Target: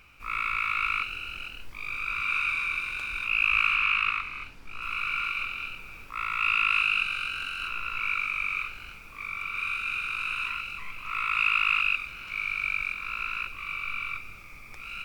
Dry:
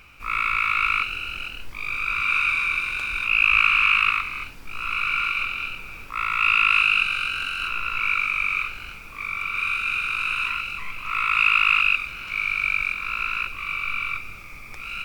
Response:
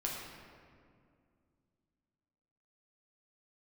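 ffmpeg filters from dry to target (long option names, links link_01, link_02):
-filter_complex "[0:a]asettb=1/sr,asplit=3[link_01][link_02][link_03];[link_01]atrim=end=3.754[link_04];[link_02]atrim=start=3.75:end=4.82,asetpts=PTS-STARTPTS,afade=type=in:duration=0.004:curve=qsin,afade=type=out:start_time=1.066:duration=0.004:curve=qsin,highshelf=frequency=9300:gain=-10.5[link_05];[link_03]atrim=start=4.816[link_06];[link_04][link_05]acrossfade=duration=0.004:curve1=hsin:curve2=qsin[link_07];[link_07][link_06]acrossfade=duration=0.004:curve1=qsin:curve2=hsin,volume=-6dB"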